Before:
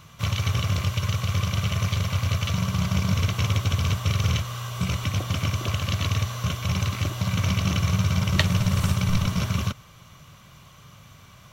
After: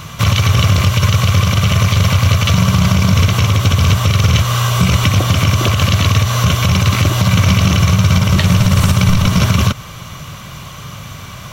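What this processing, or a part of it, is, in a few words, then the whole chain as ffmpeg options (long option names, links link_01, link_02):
loud club master: -af "acompressor=threshold=-27dB:ratio=2,asoftclip=type=hard:threshold=-10.5dB,alimiter=level_in=19.5dB:limit=-1dB:release=50:level=0:latency=1,volume=-1dB"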